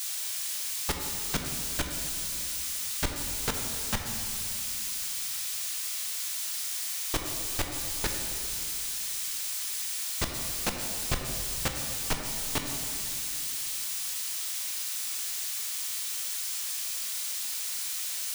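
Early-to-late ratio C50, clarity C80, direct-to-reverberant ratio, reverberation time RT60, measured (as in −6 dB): 4.0 dB, 5.0 dB, 2.5 dB, 2.6 s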